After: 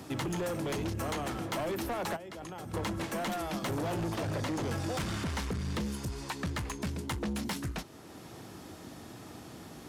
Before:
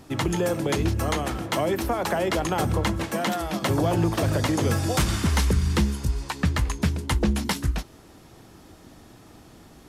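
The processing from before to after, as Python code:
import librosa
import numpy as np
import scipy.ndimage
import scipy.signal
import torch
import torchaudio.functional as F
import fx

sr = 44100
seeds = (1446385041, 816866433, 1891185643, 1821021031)

y = scipy.signal.sosfilt(scipy.signal.butter(2, 99.0, 'highpass', fs=sr, output='sos'), x)
y = fx.level_steps(y, sr, step_db=21, at=(2.15, 2.73), fade=0.02)
y = fx.high_shelf(y, sr, hz=6500.0, db=-9.0, at=(4.15, 5.81))
y = 10.0 ** (-26.0 / 20.0) * np.tanh(y / 10.0 ** (-26.0 / 20.0))
y = fx.band_squash(y, sr, depth_pct=40)
y = F.gain(torch.from_numpy(y), -4.0).numpy()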